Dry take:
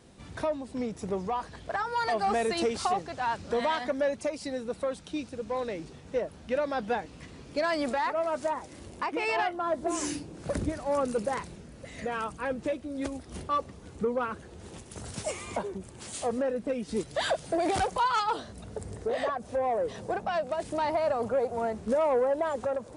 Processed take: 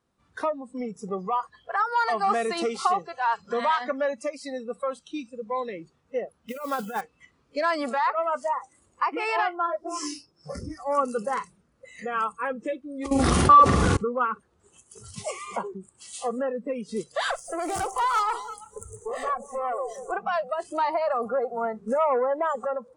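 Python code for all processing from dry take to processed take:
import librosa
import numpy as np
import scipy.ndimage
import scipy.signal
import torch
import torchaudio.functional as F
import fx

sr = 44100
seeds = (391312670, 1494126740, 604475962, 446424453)

y = fx.chain(x, sr, fx.highpass(hz=63.0, slope=12),
    fx.over_compress(threshold_db=-31.0, ratio=-0.5),
    fx.mod_noise(seeds[0], snr_db=15), at=(6.48, 7.01))
y = fx.chain(y, sr, fx.peak_eq(hz=5300.0, db=12.5, octaves=0.24),
    fx.detune_double(cents=14), at=(9.66, 10.78))
y = fx.chain(y, sr, fx.doubler(ms=44.0, db=-2),
    fx.env_flatten(amount_pct=100), at=(13.11, 13.97))
y = fx.chain(y, sr, fx.high_shelf_res(hz=5300.0, db=8.5, q=1.5),
    fx.tube_stage(drive_db=26.0, bias=0.45),
    fx.echo_alternate(ms=170, hz=820.0, feedback_pct=52, wet_db=-8.0), at=(17.31, 20.12))
y = fx.noise_reduce_blind(y, sr, reduce_db=21)
y = fx.peak_eq(y, sr, hz=1200.0, db=10.5, octaves=0.74)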